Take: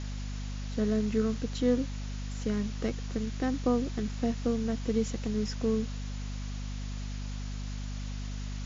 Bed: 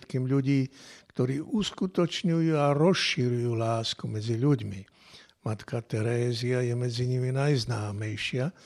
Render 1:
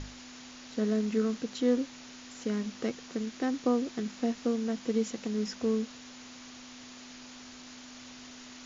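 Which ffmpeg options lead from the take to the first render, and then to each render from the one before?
-af "bandreject=f=50:t=h:w=6,bandreject=f=100:t=h:w=6,bandreject=f=150:t=h:w=6,bandreject=f=200:t=h:w=6"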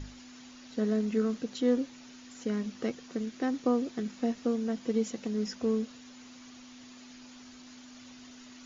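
-af "afftdn=nr=7:nf=-49"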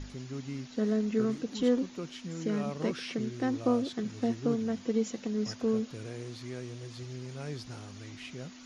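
-filter_complex "[1:a]volume=-14dB[a];[0:a][a]amix=inputs=2:normalize=0"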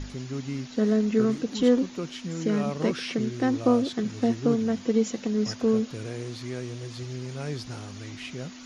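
-af "volume=6dB"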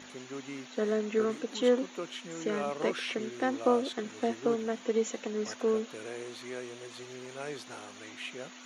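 -af "highpass=430,equalizer=f=5k:w=3.8:g=-12.5"

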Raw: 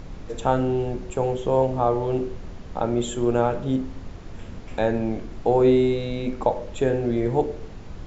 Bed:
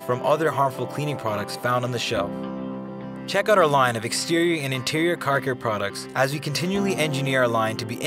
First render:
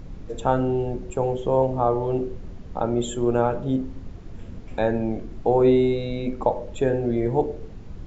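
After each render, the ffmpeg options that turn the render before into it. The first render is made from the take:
-af "afftdn=nr=7:nf=-39"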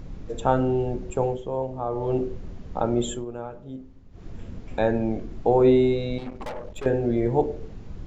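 -filter_complex "[0:a]asettb=1/sr,asplit=3[a][b][c];[a]atrim=end=6.184[d];[b]atrim=start=6.18:end=6.86,asetpts=PTS-STARTPTS,afade=t=in:d=0.004:c=qsin,afade=t=out:st=0.676:d=0.004:c=qsin,aeval=exprs='(tanh(35.5*val(0)+0.75)-tanh(0.75))/35.5':c=same[e];[c]atrim=start=6.856[f];[d][e]acrossfade=d=0.004:c1=hsin:c2=qsin[g];[g][f]acrossfade=d=0.004:c1=qsin:c2=hsin,asplit=5[h][i][j][k][l];[h]atrim=end=1.45,asetpts=PTS-STARTPTS,afade=t=out:st=1.23:d=0.22:silence=0.398107[m];[i]atrim=start=1.45:end=1.89,asetpts=PTS-STARTPTS,volume=-8dB[n];[j]atrim=start=1.89:end=3.25,asetpts=PTS-STARTPTS,afade=t=in:d=0.22:silence=0.398107,afade=t=out:st=1.23:d=0.13:silence=0.199526[o];[k]atrim=start=3.25:end=4.11,asetpts=PTS-STARTPTS,volume=-14dB[p];[l]atrim=start=4.11,asetpts=PTS-STARTPTS,afade=t=in:d=0.13:silence=0.199526[q];[m][n][o][p][q]concat=n=5:v=0:a=1"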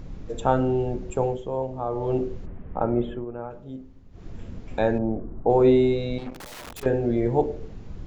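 -filter_complex "[0:a]asplit=3[a][b][c];[a]afade=t=out:st=2.45:d=0.02[d];[b]lowpass=f=2.3k:w=0.5412,lowpass=f=2.3k:w=1.3066,afade=t=in:st=2.45:d=0.02,afade=t=out:st=3.49:d=0.02[e];[c]afade=t=in:st=3.49:d=0.02[f];[d][e][f]amix=inputs=3:normalize=0,asettb=1/sr,asplit=3[g][h][i];[g]atrim=end=4.984[j];[h]atrim=start=4.98:end=5.5,asetpts=PTS-STARTPTS,afade=t=in:d=0.004:c=qsin,afade=t=out:st=0.516:d=0.004:c=qsin,lowpass=f=1.3k:w=0.5412,lowpass=f=1.3k:w=1.3066[k];[i]atrim=start=5.496[l];[j][k]acrossfade=d=0.004:c1=hsin:c2=qsin[m];[m][l]acrossfade=d=0.004:c1=qsin:c2=hsin,asettb=1/sr,asplit=3[n][o][p];[n]atrim=end=6.334[q];[o]atrim=start=6.33:end=6.83,asetpts=PTS-STARTPTS,afade=t=in:d=0.004:c=qsin,afade=t=out:st=0.496:d=0.004:c=qsin,aeval=exprs='(mod(47.3*val(0)+1,2)-1)/47.3':c=same[r];[p]atrim=start=6.826[s];[q][r]acrossfade=d=0.004:c1=hsin:c2=qsin[t];[t][s]acrossfade=d=0.004:c1=qsin:c2=hsin"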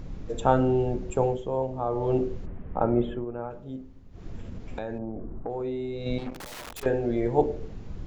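-filter_complex "[0:a]asplit=3[a][b][c];[a]afade=t=out:st=4.37:d=0.02[d];[b]acompressor=threshold=-31dB:ratio=4:attack=3.2:release=140:knee=1:detection=peak,afade=t=in:st=4.37:d=0.02,afade=t=out:st=6.05:d=0.02[e];[c]afade=t=in:st=6.05:d=0.02[f];[d][e][f]amix=inputs=3:normalize=0,asettb=1/sr,asplit=3[g][h][i];[g]atrim=end=6.634[j];[h]atrim=start=6.63:end=7.38,asetpts=PTS-STARTPTS,afade=t=in:d=0.004:c=qsin,afade=t=out:st=0.746:d=0.004:c=qsin,equalizer=f=140:w=0.45:g=-5.5[k];[i]atrim=start=7.376[l];[j][k]acrossfade=d=0.004:c1=hsin:c2=qsin[m];[m][l]acrossfade=d=0.004:c1=qsin:c2=hsin"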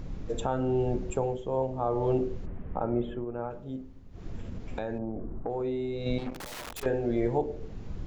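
-af "alimiter=limit=-16.5dB:level=0:latency=1:release=450"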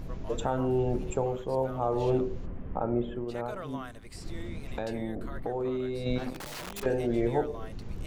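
-filter_complex "[1:a]volume=-23.5dB[a];[0:a][a]amix=inputs=2:normalize=0"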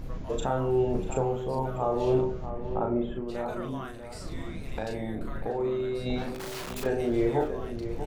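-filter_complex "[0:a]asplit=2[a][b];[b]adelay=37,volume=-4dB[c];[a][c]amix=inputs=2:normalize=0,asplit=2[d][e];[e]adelay=641.4,volume=-10dB,highshelf=f=4k:g=-14.4[f];[d][f]amix=inputs=2:normalize=0"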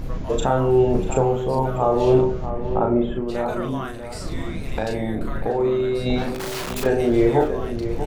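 -af "volume=8.5dB"

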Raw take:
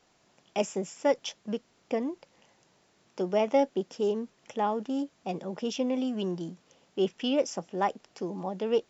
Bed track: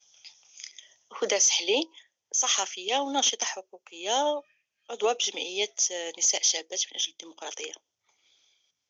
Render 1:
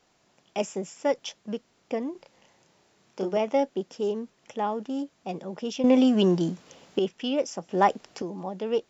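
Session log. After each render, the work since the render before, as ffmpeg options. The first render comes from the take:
-filter_complex "[0:a]asettb=1/sr,asplit=3[a][b][c];[a]atrim=end=2.124[d];[b]atrim=start=2.12:end=3.37,asetpts=PTS-STARTPTS,afade=t=in:d=0.004:c=qsin,afade=t=out:st=1.246:d=0.004:c=qsin,asplit=2[e][f];[f]adelay=31,volume=-2.5dB[g];[e][g]amix=inputs=2:normalize=0,atrim=end_sample=55125[h];[c]atrim=start=3.366[i];[d][h]acrossfade=d=0.004:c1=hsin:c2=qsin[j];[j][i]acrossfade=d=0.004:c1=qsin:c2=hsin,asettb=1/sr,asplit=3[k][l][m];[k]atrim=end=7.694[n];[l]atrim=start=7.69:end=8.22,asetpts=PTS-STARTPTS,afade=t=in:d=0.004:c=qsin,afade=t=out:st=0.526:d=0.004:c=qsin,acontrast=89[o];[m]atrim=start=8.216[p];[n][o]acrossfade=d=0.004:c1=hsin:c2=qsin[q];[q][p]acrossfade=d=0.004:c1=qsin:c2=hsin,asplit=3[r][s][t];[r]atrim=end=5.842[u];[s]atrim=start=5.838:end=6.992,asetpts=PTS-STARTPTS,volume=10.5dB[v];[t]atrim=start=6.988[w];[u][v]acrossfade=d=0.004:c1=hsin:c2=hsin[x];[x][w]acrossfade=d=0.004:c1=hsin:c2=hsin"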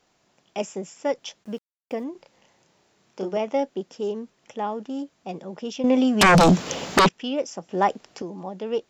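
-filter_complex "[0:a]asplit=3[a][b][c];[a]afade=t=out:st=1.43:d=0.02[d];[b]aeval=exprs='val(0)*gte(abs(val(0)),0.00316)':c=same,afade=t=in:st=1.43:d=0.02,afade=t=out:st=2.03:d=0.02[e];[c]afade=t=in:st=2.03:d=0.02[f];[d][e][f]amix=inputs=3:normalize=0,asettb=1/sr,asplit=3[g][h][i];[g]atrim=end=6.214[j];[h]atrim=start=6.21:end=7.09,asetpts=PTS-STARTPTS,afade=t=in:d=0.004:c=qsin,afade=t=out:st=0.876:d=0.004:c=qsin,aeval=exprs='0.299*sin(PI/2*7.08*val(0)/0.299)':c=same[k];[i]atrim=start=7.086[l];[j][k]acrossfade=d=0.004:c1=hsin:c2=qsin[m];[m][l]acrossfade=d=0.004:c1=qsin:c2=hsin"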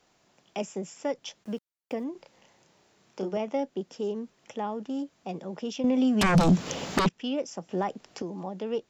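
-filter_complex "[0:a]alimiter=limit=-12.5dB:level=0:latency=1:release=141,acrossover=split=250[a][b];[b]acompressor=threshold=-38dB:ratio=1.5[c];[a][c]amix=inputs=2:normalize=0"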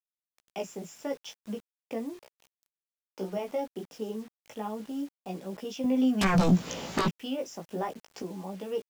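-af "flanger=delay=15:depth=3.8:speed=0.34,acrusher=bits=8:mix=0:aa=0.000001"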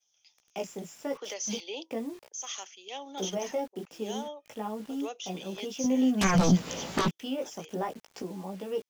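-filter_complex "[1:a]volume=-13.5dB[a];[0:a][a]amix=inputs=2:normalize=0"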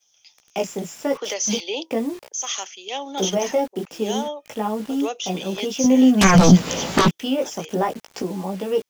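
-af "volume=11dB,alimiter=limit=-2dB:level=0:latency=1"

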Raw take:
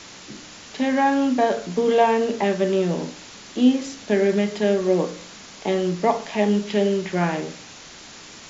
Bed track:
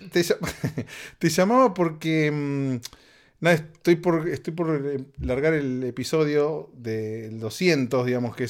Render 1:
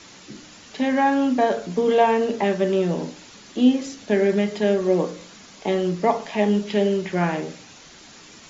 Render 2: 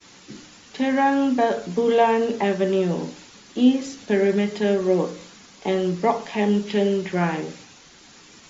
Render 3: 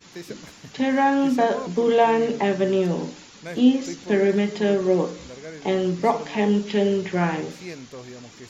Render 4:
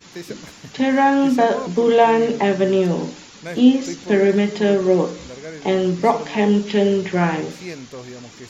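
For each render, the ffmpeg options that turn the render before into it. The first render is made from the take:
-af "afftdn=nr=6:nf=-42"
-af "agate=range=-33dB:threshold=-42dB:ratio=3:detection=peak,bandreject=f=630:w=12"
-filter_complex "[1:a]volume=-16.5dB[a];[0:a][a]amix=inputs=2:normalize=0"
-af "volume=4dB"

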